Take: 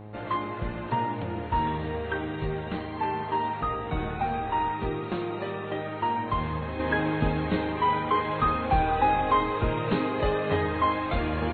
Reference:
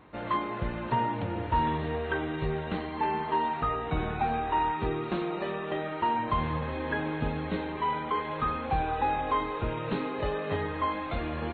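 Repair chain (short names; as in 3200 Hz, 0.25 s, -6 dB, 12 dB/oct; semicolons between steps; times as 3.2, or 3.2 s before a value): de-hum 105.7 Hz, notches 8; gain 0 dB, from 6.79 s -5 dB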